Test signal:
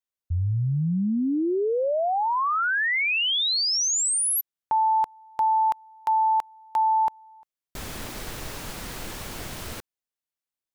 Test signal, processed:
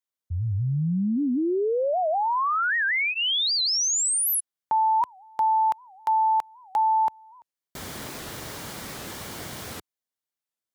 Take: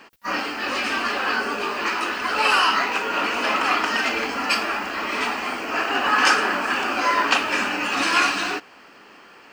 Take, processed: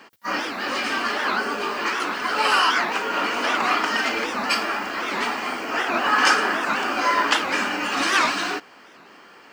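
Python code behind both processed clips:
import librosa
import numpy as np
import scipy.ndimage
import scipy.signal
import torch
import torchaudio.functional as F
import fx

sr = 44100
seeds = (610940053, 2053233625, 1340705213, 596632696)

y = scipy.signal.sosfilt(scipy.signal.butter(2, 88.0, 'highpass', fs=sr, output='sos'), x)
y = fx.notch(y, sr, hz=2600.0, q=12.0)
y = fx.record_warp(y, sr, rpm=78.0, depth_cents=250.0)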